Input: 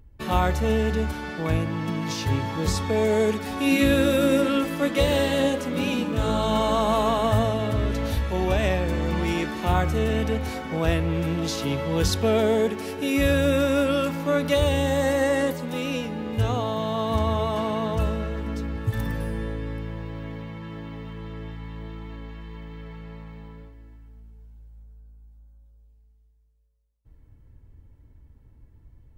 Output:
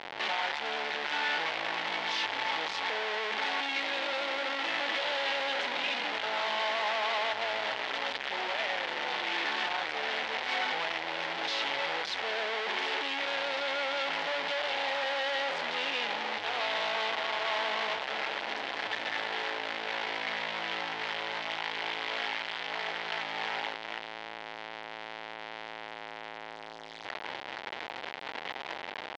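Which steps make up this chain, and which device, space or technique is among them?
home computer beeper (infinite clipping; speaker cabinet 780–4200 Hz, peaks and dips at 820 Hz +4 dB, 1200 Hz -5 dB, 2000 Hz +4 dB, 3200 Hz +3 dB); gain -2.5 dB

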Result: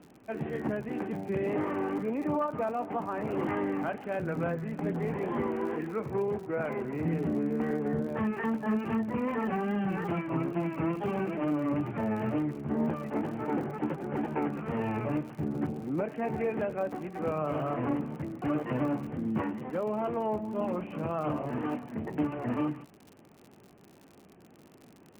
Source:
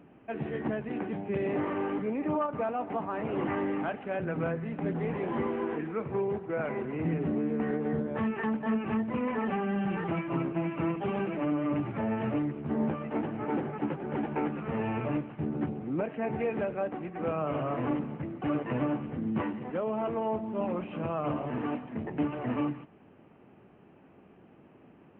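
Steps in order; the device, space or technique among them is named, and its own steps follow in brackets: lo-fi chain (LPF 3100 Hz; wow and flutter; crackle 77/s -42 dBFS)

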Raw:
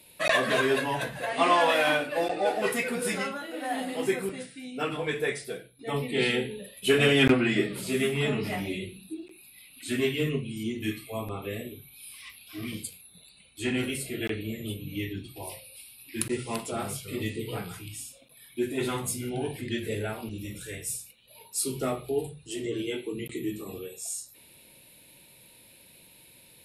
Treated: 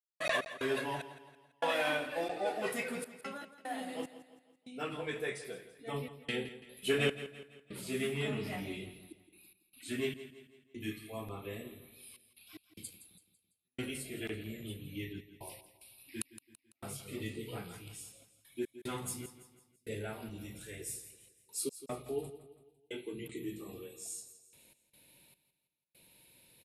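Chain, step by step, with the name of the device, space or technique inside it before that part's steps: 20.79–21.72 bell 370 Hz +15 dB -> +7 dB 0.79 oct; trance gate with a delay (step gate ".x.xx...xxxxxxx" 74 bpm -60 dB; feedback echo 0.167 s, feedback 45%, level -14 dB); gain -8.5 dB

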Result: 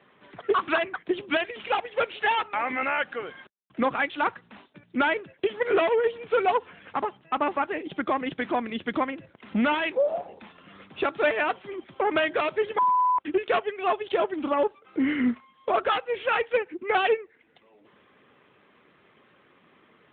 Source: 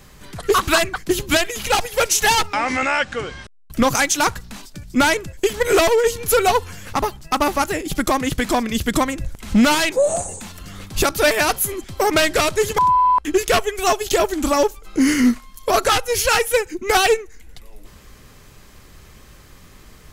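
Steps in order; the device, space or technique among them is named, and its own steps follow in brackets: telephone (BPF 260–3500 Hz; gain -6 dB; AMR-NB 12.2 kbps 8000 Hz)

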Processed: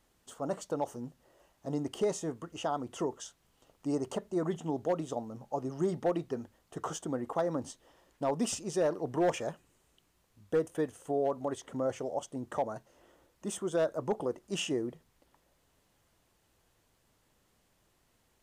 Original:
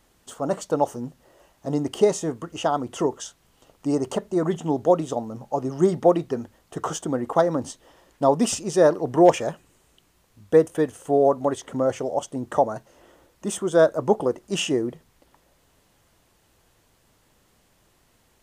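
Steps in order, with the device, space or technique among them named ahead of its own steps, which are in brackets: clipper into limiter (hard clip -9.5 dBFS, distortion -20 dB; limiter -13 dBFS, peak gain reduction 3.5 dB); gain -9 dB

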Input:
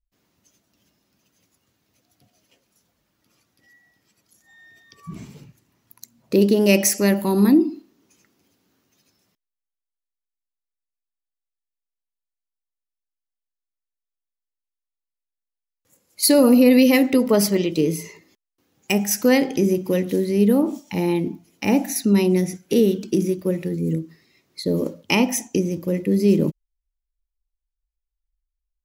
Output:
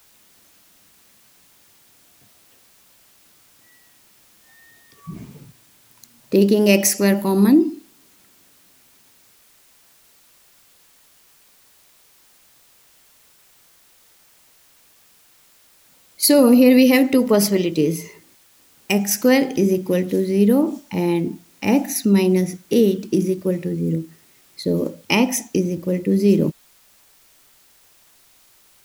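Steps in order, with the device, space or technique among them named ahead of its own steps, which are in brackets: plain cassette with noise reduction switched in (mismatched tape noise reduction decoder only; wow and flutter 15 cents; white noise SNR 33 dB); gain +1.5 dB

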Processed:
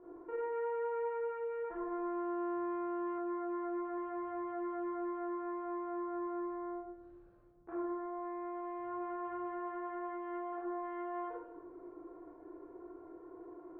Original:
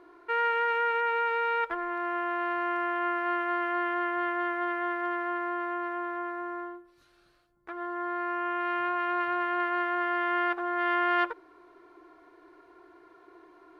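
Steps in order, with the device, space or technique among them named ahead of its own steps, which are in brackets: television next door (compressor 4:1, threshold -36 dBFS, peak gain reduction 13 dB; LPF 600 Hz 12 dB/oct; reverb RT60 0.85 s, pre-delay 23 ms, DRR -7.5 dB); 3.18–3.98 LPF 2300 Hz; gain -2 dB

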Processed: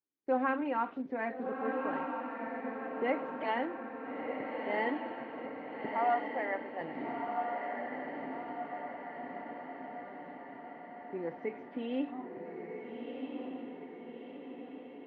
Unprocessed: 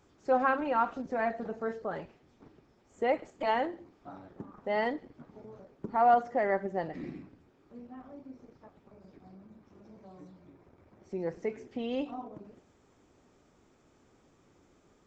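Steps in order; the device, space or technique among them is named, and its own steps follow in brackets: kitchen radio (speaker cabinet 180–3400 Hz, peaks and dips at 190 Hz -3 dB, 270 Hz +7 dB, 670 Hz -4 dB, 1300 Hz -4 dB, 2100 Hz +4 dB); 5.89–6.81 HPF 550 Hz 24 dB/oct; gate -56 dBFS, range -32 dB; diffused feedback echo 1.356 s, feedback 60%, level -3.5 dB; gain -3.5 dB

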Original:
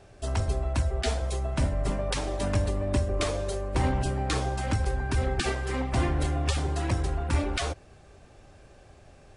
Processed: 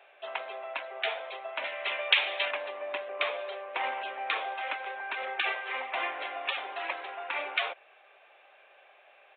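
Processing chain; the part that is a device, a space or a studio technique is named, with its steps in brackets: 1.64–2.51 weighting filter D; musical greeting card (downsampling 8000 Hz; HPF 600 Hz 24 dB/oct; bell 2400 Hz +8 dB 0.6 oct)

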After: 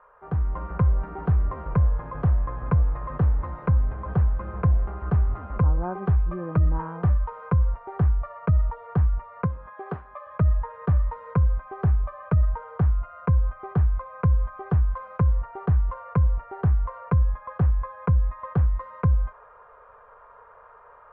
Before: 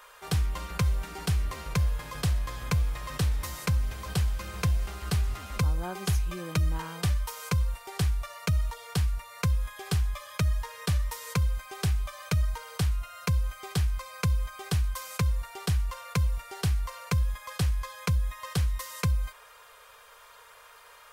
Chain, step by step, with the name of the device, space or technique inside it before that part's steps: 9.44–10.25 HPF 120 Hz -> 410 Hz 12 dB/oct; action camera in a waterproof case (LPF 1300 Hz 24 dB/oct; AGC gain up to 6 dB; AAC 64 kbps 44100 Hz)

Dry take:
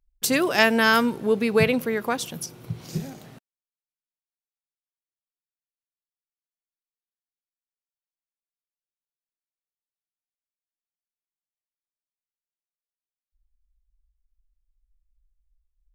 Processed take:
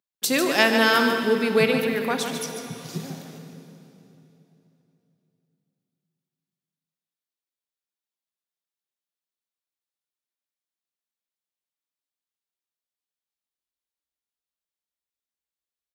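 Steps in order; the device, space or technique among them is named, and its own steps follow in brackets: PA in a hall (HPF 160 Hz 24 dB/oct; bell 3700 Hz +4 dB 0.57 oct; echo 0.146 s -7.5 dB; reverb RT60 3.2 s, pre-delay 29 ms, DRR 6.5 dB); gain -1 dB

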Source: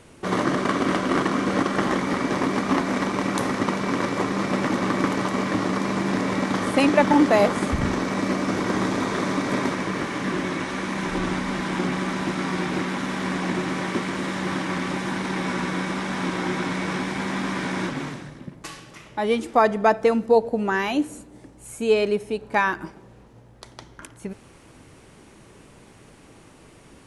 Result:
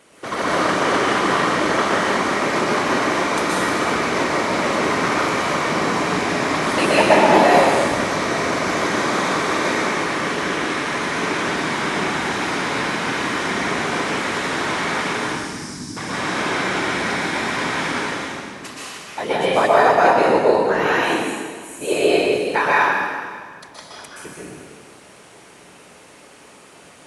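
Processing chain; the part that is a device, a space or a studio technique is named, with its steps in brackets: 15.17–15.97 Chebyshev band-stop 210–4800 Hz, order 4; whispering ghost (whisperiser; HPF 530 Hz 6 dB/oct; reverb RT60 1.7 s, pre-delay 0.116 s, DRR -6.5 dB); gain +1 dB

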